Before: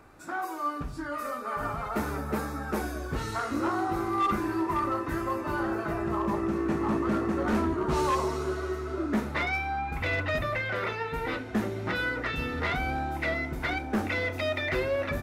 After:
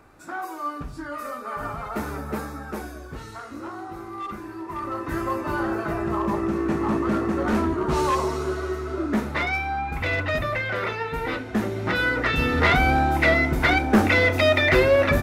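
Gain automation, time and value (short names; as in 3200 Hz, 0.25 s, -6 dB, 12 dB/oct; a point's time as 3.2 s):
2.35 s +1 dB
3.44 s -7 dB
4.59 s -7 dB
5.18 s +4 dB
11.58 s +4 dB
12.66 s +11 dB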